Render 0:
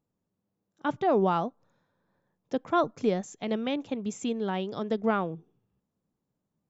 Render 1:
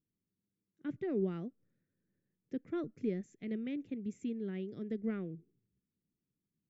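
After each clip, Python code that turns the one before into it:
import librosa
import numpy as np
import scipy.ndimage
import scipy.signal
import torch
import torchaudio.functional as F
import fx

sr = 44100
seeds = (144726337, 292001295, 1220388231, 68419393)

y = fx.curve_eq(x, sr, hz=(370.0, 920.0, 2000.0, 3200.0), db=(0, -28, -2, -14))
y = F.gain(torch.from_numpy(y), -6.5).numpy()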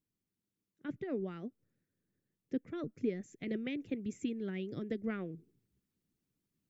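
y = fx.hpss(x, sr, part='percussive', gain_db=9)
y = fx.rider(y, sr, range_db=10, speed_s=0.5)
y = F.gain(torch.from_numpy(y), -2.5).numpy()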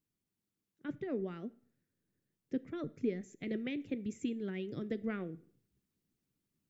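y = fx.rev_plate(x, sr, seeds[0], rt60_s=0.54, hf_ratio=0.9, predelay_ms=0, drr_db=16.5)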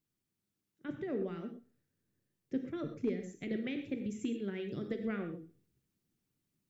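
y = fx.rev_gated(x, sr, seeds[1], gate_ms=150, shape='flat', drr_db=5.5)
y = np.clip(y, -10.0 ** (-25.0 / 20.0), 10.0 ** (-25.0 / 20.0))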